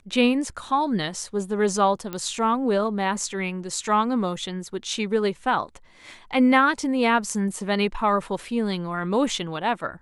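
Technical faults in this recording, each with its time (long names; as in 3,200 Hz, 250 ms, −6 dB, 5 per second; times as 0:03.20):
0:02.13: click −16 dBFS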